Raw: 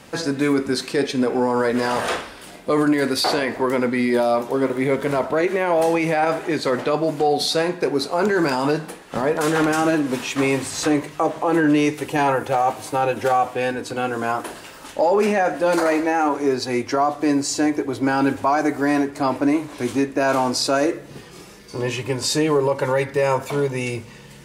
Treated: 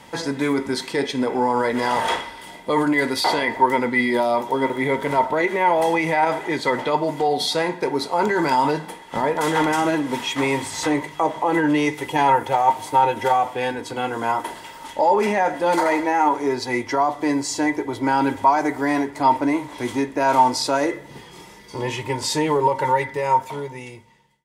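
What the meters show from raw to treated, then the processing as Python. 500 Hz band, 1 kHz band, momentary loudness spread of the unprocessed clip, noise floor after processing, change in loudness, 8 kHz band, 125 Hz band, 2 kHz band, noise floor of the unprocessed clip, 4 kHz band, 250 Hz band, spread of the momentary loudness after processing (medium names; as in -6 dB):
-2.5 dB, +4.0 dB, 7 LU, -42 dBFS, 0.0 dB, -2.5 dB, -3.0 dB, +1.0 dB, -42 dBFS, -0.5 dB, -2.5 dB, 8 LU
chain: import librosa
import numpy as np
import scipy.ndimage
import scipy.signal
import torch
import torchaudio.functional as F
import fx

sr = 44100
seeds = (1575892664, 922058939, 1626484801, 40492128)

y = fx.fade_out_tail(x, sr, length_s=1.83)
y = fx.small_body(y, sr, hz=(920.0, 2000.0, 3300.0), ring_ms=65, db=17)
y = F.gain(torch.from_numpy(y), -2.5).numpy()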